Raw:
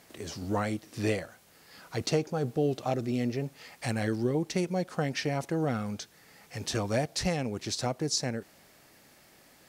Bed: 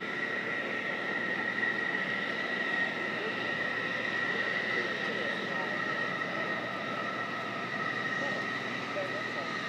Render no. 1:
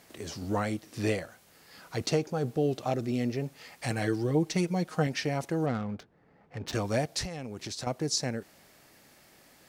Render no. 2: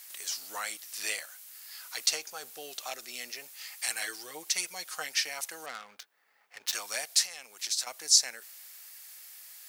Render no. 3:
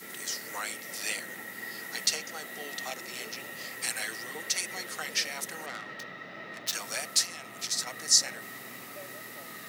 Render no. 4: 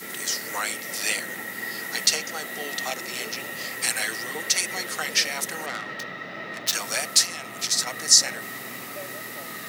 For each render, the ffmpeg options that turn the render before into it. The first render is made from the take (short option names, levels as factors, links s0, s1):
-filter_complex "[0:a]asettb=1/sr,asplit=3[s0][s1][s2];[s0]atrim=end=3.904[s3];[s1]atrim=start=3.9:end=5.07,asetpts=PTS-STARTPTS,afade=t=in:d=0.004:c=qsin,afade=t=out:st=1.166:d=0.004:c=qsin,aecho=1:1:6.4:0.59,atrim=end_sample=51597[s4];[s2]atrim=start=5.066[s5];[s3][s4]acrossfade=d=0.004:c1=hsin:c2=qsin[s6];[s6][s5]acrossfade=d=0.004:c1=qsin:c2=hsin,asettb=1/sr,asplit=3[s7][s8][s9];[s7]atrim=end=5.664[s10];[s8]atrim=start=5.66:end=6.73,asetpts=PTS-STARTPTS,afade=t=in:d=0.004:c=qsin,afade=t=out:st=1.066:d=0.004:c=qsin,adynamicsmooth=sensitivity=6.5:basefreq=890[s11];[s9]atrim=start=6.726[s12];[s10][s11]acrossfade=d=0.004:c1=hsin:c2=qsin[s13];[s13][s12]acrossfade=d=0.004:c1=qsin:c2=hsin,asettb=1/sr,asplit=3[s14][s15][s16];[s14]atrim=end=7.244[s17];[s15]atrim=start=7.24:end=7.87,asetpts=PTS-STARTPTS,afade=t=in:d=0.004:c=qsin,afade=t=out:st=0.626:d=0.004:c=qsin,acompressor=threshold=0.0224:ratio=12:attack=3.2:release=140:knee=1:detection=peak[s18];[s16]atrim=start=7.866[s19];[s17][s18]acrossfade=d=0.004:c1=hsin:c2=qsin[s20];[s20][s19]acrossfade=d=0.004:c1=qsin:c2=hsin"
-af "highpass=1300,aemphasis=mode=production:type=75kf"
-filter_complex "[1:a]volume=0.316[s0];[0:a][s0]amix=inputs=2:normalize=0"
-af "volume=2.37,alimiter=limit=0.794:level=0:latency=1"